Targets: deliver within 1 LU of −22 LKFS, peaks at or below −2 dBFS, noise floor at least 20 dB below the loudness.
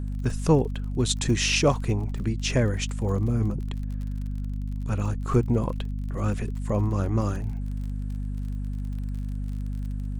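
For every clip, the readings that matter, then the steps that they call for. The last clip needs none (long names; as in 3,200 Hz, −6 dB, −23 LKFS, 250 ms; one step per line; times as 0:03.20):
crackle rate 43 per second; mains hum 50 Hz; hum harmonics up to 250 Hz; level of the hum −27 dBFS; integrated loudness −27.5 LKFS; sample peak −7.5 dBFS; target loudness −22.0 LKFS
→ click removal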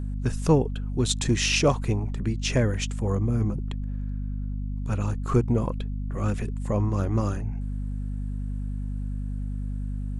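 crackle rate 0.098 per second; mains hum 50 Hz; hum harmonics up to 250 Hz; level of the hum −27 dBFS
→ hum removal 50 Hz, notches 5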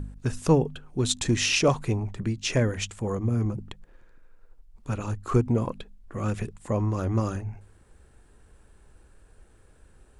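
mains hum none found; integrated loudness −27.0 LKFS; sample peak −9.0 dBFS; target loudness −22.0 LKFS
→ level +5 dB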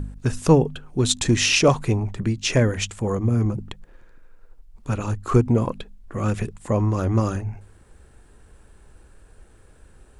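integrated loudness −22.0 LKFS; sample peak −4.0 dBFS; background noise floor −52 dBFS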